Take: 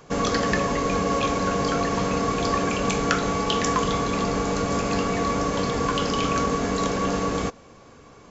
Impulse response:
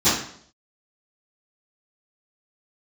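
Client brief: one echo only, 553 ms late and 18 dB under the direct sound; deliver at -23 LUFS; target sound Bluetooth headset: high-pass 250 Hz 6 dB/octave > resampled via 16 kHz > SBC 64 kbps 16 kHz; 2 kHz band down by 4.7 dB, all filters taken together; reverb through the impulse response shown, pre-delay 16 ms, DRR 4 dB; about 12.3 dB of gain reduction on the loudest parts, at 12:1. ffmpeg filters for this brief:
-filter_complex "[0:a]equalizer=f=2000:t=o:g=-6,acompressor=threshold=0.0251:ratio=12,aecho=1:1:553:0.126,asplit=2[s0][s1];[1:a]atrim=start_sample=2205,adelay=16[s2];[s1][s2]afir=irnorm=-1:irlink=0,volume=0.0708[s3];[s0][s3]amix=inputs=2:normalize=0,highpass=f=250:p=1,aresample=16000,aresample=44100,volume=3.98" -ar 16000 -c:a sbc -b:a 64k

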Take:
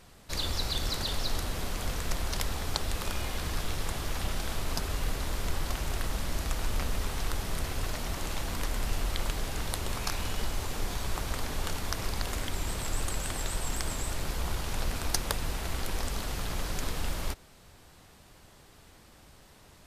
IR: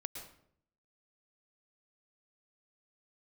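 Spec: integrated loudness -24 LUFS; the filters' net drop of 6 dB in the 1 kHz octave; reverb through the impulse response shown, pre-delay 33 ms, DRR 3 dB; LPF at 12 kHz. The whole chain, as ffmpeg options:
-filter_complex "[0:a]lowpass=12000,equalizer=f=1000:t=o:g=-8,asplit=2[s0][s1];[1:a]atrim=start_sample=2205,adelay=33[s2];[s1][s2]afir=irnorm=-1:irlink=0,volume=0.891[s3];[s0][s3]amix=inputs=2:normalize=0,volume=2.82"

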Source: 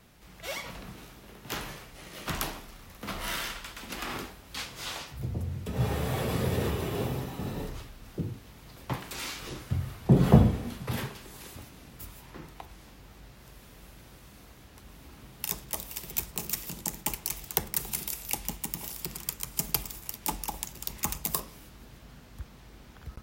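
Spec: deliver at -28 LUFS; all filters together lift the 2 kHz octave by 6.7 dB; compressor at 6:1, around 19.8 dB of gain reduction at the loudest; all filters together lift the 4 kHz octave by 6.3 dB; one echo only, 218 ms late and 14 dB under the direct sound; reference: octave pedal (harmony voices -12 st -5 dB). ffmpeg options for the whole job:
-filter_complex "[0:a]equalizer=f=2000:t=o:g=6.5,equalizer=f=4000:t=o:g=6,acompressor=threshold=0.0178:ratio=6,aecho=1:1:218:0.2,asplit=2[s0][s1];[s1]asetrate=22050,aresample=44100,atempo=2,volume=0.562[s2];[s0][s2]amix=inputs=2:normalize=0,volume=3.55"

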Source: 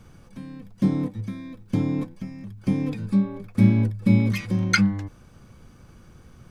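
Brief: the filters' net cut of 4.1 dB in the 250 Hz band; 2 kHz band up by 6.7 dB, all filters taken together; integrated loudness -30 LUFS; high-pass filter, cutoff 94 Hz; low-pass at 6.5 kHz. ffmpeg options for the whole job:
-af "highpass=94,lowpass=6500,equalizer=f=250:t=o:g=-5.5,equalizer=f=2000:t=o:g=8.5,volume=0.531"

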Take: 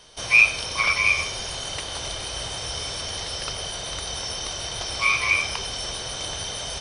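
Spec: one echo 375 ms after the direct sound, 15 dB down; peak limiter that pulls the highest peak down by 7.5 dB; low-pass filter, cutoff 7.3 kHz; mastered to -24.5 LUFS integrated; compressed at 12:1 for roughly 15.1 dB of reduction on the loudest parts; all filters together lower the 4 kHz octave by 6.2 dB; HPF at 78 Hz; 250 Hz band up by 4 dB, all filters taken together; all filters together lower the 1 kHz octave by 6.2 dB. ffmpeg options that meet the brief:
-af "highpass=78,lowpass=7300,equalizer=f=250:t=o:g=6.5,equalizer=f=1000:t=o:g=-7.5,equalizer=f=4000:t=o:g=-8,acompressor=threshold=0.0355:ratio=12,alimiter=level_in=1.26:limit=0.0631:level=0:latency=1,volume=0.794,aecho=1:1:375:0.178,volume=3.16"

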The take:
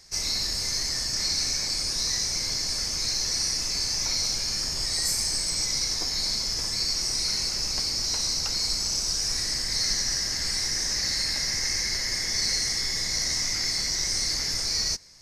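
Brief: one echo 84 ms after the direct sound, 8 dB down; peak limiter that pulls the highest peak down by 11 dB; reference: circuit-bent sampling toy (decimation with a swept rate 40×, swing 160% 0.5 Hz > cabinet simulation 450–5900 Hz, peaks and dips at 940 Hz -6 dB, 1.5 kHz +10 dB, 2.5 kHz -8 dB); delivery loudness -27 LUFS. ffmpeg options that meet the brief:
-af "alimiter=limit=0.0631:level=0:latency=1,aecho=1:1:84:0.398,acrusher=samples=40:mix=1:aa=0.000001:lfo=1:lforange=64:lforate=0.5,highpass=450,equalizer=f=940:t=q:w=4:g=-6,equalizer=f=1500:t=q:w=4:g=10,equalizer=f=2500:t=q:w=4:g=-8,lowpass=f=5900:w=0.5412,lowpass=f=5900:w=1.3066,volume=2.66"

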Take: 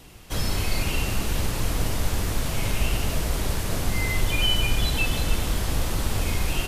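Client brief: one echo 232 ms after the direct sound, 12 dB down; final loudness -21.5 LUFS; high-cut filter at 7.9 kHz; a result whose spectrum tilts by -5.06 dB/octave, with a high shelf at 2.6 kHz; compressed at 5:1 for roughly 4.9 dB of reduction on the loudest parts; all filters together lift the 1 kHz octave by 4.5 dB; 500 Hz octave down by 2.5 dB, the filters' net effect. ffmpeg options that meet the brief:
-af "lowpass=7900,equalizer=f=500:t=o:g=-5.5,equalizer=f=1000:t=o:g=8.5,highshelf=f=2600:g=-8,acompressor=threshold=0.0794:ratio=5,aecho=1:1:232:0.251,volume=2.82"

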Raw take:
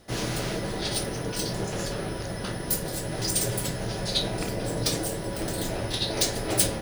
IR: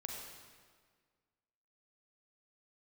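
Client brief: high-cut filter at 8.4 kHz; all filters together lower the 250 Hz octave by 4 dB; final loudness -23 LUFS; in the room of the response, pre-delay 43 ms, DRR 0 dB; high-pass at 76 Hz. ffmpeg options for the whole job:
-filter_complex "[0:a]highpass=76,lowpass=8400,equalizer=f=250:t=o:g=-6,asplit=2[s0][s1];[1:a]atrim=start_sample=2205,adelay=43[s2];[s1][s2]afir=irnorm=-1:irlink=0,volume=1.12[s3];[s0][s3]amix=inputs=2:normalize=0,volume=1.68"

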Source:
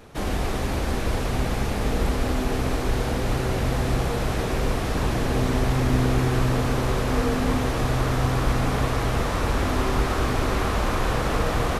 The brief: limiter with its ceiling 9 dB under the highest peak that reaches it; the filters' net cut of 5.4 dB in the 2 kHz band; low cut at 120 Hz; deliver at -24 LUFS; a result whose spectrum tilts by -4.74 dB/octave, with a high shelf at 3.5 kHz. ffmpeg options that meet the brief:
-af "highpass=120,equalizer=f=2000:t=o:g=-9,highshelf=f=3500:g=6.5,volume=1.78,alimiter=limit=0.178:level=0:latency=1"

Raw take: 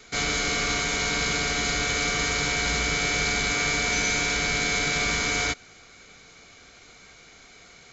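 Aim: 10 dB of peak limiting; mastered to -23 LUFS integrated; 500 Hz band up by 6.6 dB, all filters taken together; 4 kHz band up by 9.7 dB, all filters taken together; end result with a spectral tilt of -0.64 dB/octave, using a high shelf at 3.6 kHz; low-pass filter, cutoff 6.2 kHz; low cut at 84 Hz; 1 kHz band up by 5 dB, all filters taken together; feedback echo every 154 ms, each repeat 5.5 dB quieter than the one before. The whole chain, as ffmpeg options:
-af "highpass=84,lowpass=6200,equalizer=f=500:t=o:g=7,equalizer=f=1000:t=o:g=3.5,highshelf=f=3600:g=5.5,equalizer=f=4000:t=o:g=8.5,alimiter=limit=0.178:level=0:latency=1,aecho=1:1:154|308|462|616|770|924|1078:0.531|0.281|0.149|0.079|0.0419|0.0222|0.0118,volume=0.794"

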